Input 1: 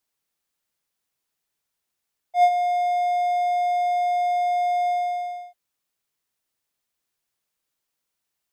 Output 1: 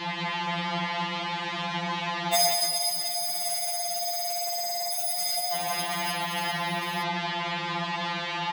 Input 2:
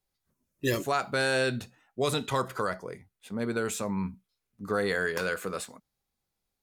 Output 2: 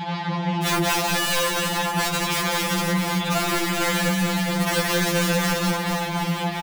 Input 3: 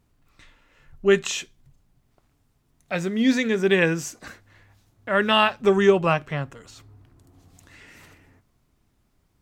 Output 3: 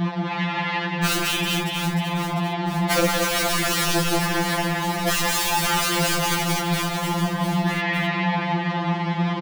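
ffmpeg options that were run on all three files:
-filter_complex "[0:a]aeval=exprs='val(0)+0.5*0.0473*sgn(val(0))':c=same,highpass=f=160:w=0.5412,highpass=f=160:w=1.3066,equalizer=f=180:t=q:w=4:g=6,equalizer=f=280:t=q:w=4:g=-8,equalizer=f=470:t=q:w=4:g=-9,equalizer=f=870:t=q:w=4:g=7,equalizer=f=1.4k:t=q:w=4:g=-8,equalizer=f=2.5k:t=q:w=4:g=-5,lowpass=f=3.1k:w=0.5412,lowpass=f=3.1k:w=1.3066,bandreject=f=50:t=h:w=6,bandreject=f=100:t=h:w=6,bandreject=f=150:t=h:w=6,bandreject=f=200:t=h:w=6,bandreject=f=250:t=h:w=6,bandreject=f=300:t=h:w=6,bandreject=f=350:t=h:w=6,bandreject=f=400:t=h:w=6,bandreject=f=450:t=h:w=6,bandreject=f=500:t=h:w=6,asplit=2[a][b];[b]alimiter=limit=-17.5dB:level=0:latency=1:release=206,volume=2dB[c];[a][c]amix=inputs=2:normalize=0,adynamicequalizer=threshold=0.02:dfrequency=590:dqfactor=6.8:tfrequency=590:tqfactor=6.8:attack=5:release=100:ratio=0.375:range=3:mode=cutabove:tftype=bell,aeval=exprs='(mod(7.08*val(0)+1,2)-1)/7.08':c=same,acontrast=53,asplit=2[d][e];[e]aecho=0:1:180|414|718.2|1114|1628:0.631|0.398|0.251|0.158|0.1[f];[d][f]amix=inputs=2:normalize=0,acompressor=threshold=-17dB:ratio=6,afftfilt=real='re*2.83*eq(mod(b,8),0)':imag='im*2.83*eq(mod(b,8),0)':win_size=2048:overlap=0.75"

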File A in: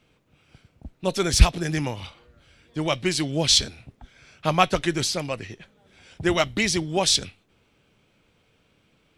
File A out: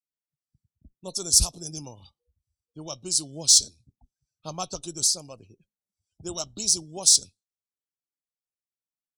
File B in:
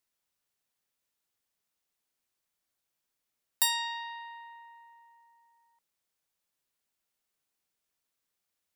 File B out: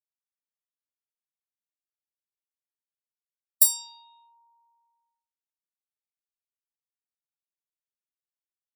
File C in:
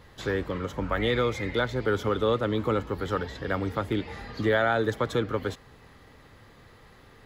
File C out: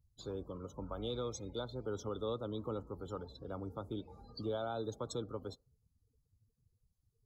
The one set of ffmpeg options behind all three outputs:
-af "afftdn=nr=34:nf=-40,aexciter=amount=10.6:drive=6.7:freq=4.7k,asuperstop=centerf=1900:order=4:qfactor=1.1,volume=-13.5dB"

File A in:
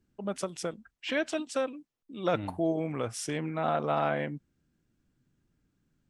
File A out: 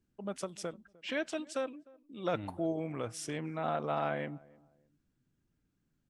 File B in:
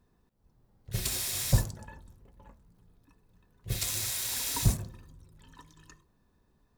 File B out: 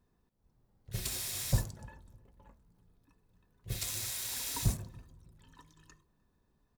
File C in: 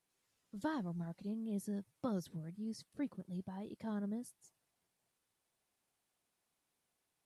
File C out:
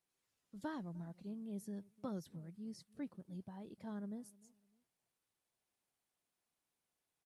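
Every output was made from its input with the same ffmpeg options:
-filter_complex "[0:a]asplit=2[a][b];[b]adelay=303,lowpass=f=830:p=1,volume=-22dB,asplit=2[c][d];[d]adelay=303,lowpass=f=830:p=1,volume=0.32[e];[a][c][e]amix=inputs=3:normalize=0,volume=-5dB"

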